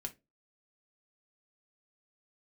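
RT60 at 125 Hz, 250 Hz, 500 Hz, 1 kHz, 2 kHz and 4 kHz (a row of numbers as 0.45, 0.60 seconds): 0.30, 0.30, 0.30, 0.20, 0.20, 0.15 seconds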